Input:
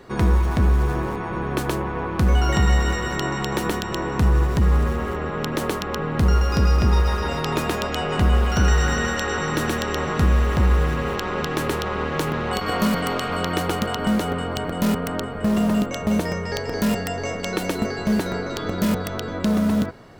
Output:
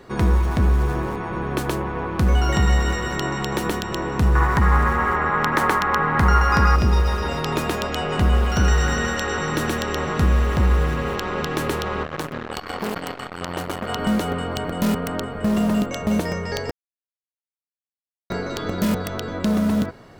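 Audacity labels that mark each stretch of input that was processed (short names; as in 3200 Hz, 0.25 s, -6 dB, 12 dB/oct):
4.350000	6.760000	band shelf 1300 Hz +11.5 dB
12.030000	13.890000	core saturation saturates under 2000 Hz
16.710000	18.300000	mute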